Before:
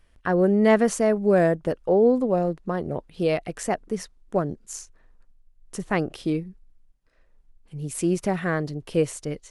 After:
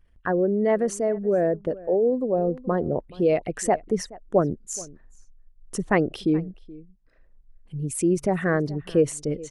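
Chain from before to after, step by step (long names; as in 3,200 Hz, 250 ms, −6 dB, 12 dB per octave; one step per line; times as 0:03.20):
spectral envelope exaggerated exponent 1.5
slap from a distant wall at 73 metres, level −21 dB
speech leveller within 4 dB 0.5 s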